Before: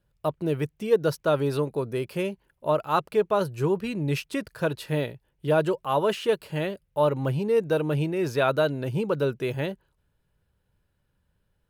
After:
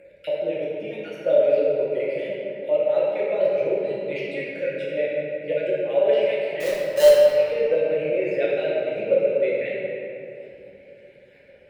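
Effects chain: random spectral dropouts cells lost 34%; upward compressor, threshold -27 dBFS; double band-pass 1100 Hz, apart 2 oct; 6.6–7.18 companded quantiser 4-bit; reverb RT60 3.0 s, pre-delay 6 ms, DRR -6.5 dB; gain +6 dB

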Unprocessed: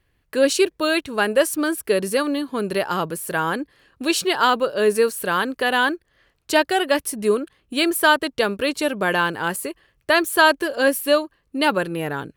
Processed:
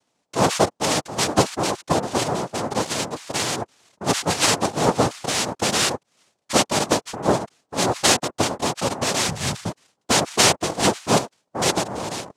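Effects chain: noise vocoder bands 2; 9.28–9.7 resonant low shelf 210 Hz +10.5 dB, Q 1.5; gain -1.5 dB

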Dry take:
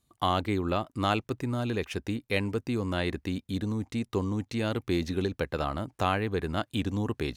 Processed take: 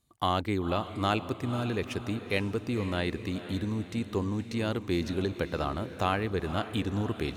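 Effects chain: diffused feedback echo 0.493 s, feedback 47%, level -11.5 dB; gain -1 dB

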